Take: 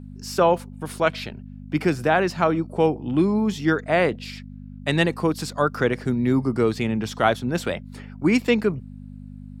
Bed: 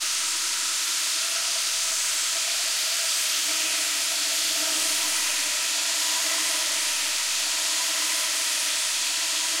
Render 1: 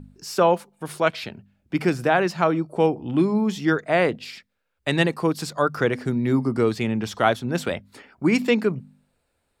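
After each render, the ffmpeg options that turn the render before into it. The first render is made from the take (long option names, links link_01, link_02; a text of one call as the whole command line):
ffmpeg -i in.wav -af "bandreject=frequency=50:width_type=h:width=4,bandreject=frequency=100:width_type=h:width=4,bandreject=frequency=150:width_type=h:width=4,bandreject=frequency=200:width_type=h:width=4,bandreject=frequency=250:width_type=h:width=4" out.wav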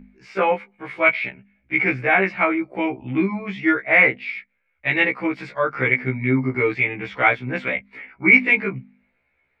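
ffmpeg -i in.wav -af "lowpass=frequency=2200:width_type=q:width=13,afftfilt=real='re*1.73*eq(mod(b,3),0)':imag='im*1.73*eq(mod(b,3),0)':win_size=2048:overlap=0.75" out.wav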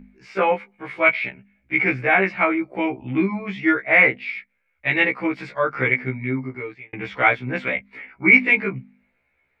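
ffmpeg -i in.wav -filter_complex "[0:a]asplit=2[link_01][link_02];[link_01]atrim=end=6.93,asetpts=PTS-STARTPTS,afade=type=out:start_time=5.81:duration=1.12[link_03];[link_02]atrim=start=6.93,asetpts=PTS-STARTPTS,afade=type=in:duration=0.004:curve=hsin[link_04];[link_03][link_04]concat=n=2:v=0:a=1" out.wav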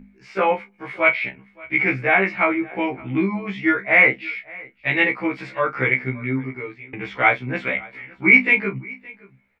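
ffmpeg -i in.wav -filter_complex "[0:a]asplit=2[link_01][link_02];[link_02]adelay=30,volume=-11.5dB[link_03];[link_01][link_03]amix=inputs=2:normalize=0,aecho=1:1:569:0.0708" out.wav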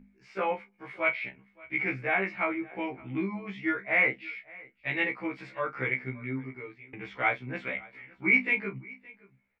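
ffmpeg -i in.wav -af "volume=-10.5dB" out.wav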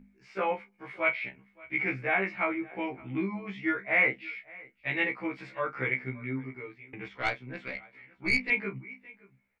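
ffmpeg -i in.wav -filter_complex "[0:a]asettb=1/sr,asplit=3[link_01][link_02][link_03];[link_01]atrim=end=7.084[link_04];[link_02]atrim=start=7.08:end=8.5,asetpts=PTS-STARTPTS,afade=type=in:duration=0.004:curve=qsin,afade=type=out:start_time=1.416:duration=0.004:curve=qsin,aeval=exprs='(tanh(7.08*val(0)+0.75)-tanh(0.75))/7.08':channel_layout=same[link_05];[link_03]atrim=start=8.496[link_06];[link_04][link_05]acrossfade=duration=0.004:curve1=hsin:curve2=qsin[link_07];[link_07][link_06]acrossfade=duration=0.004:curve1=qsin:curve2=hsin" out.wav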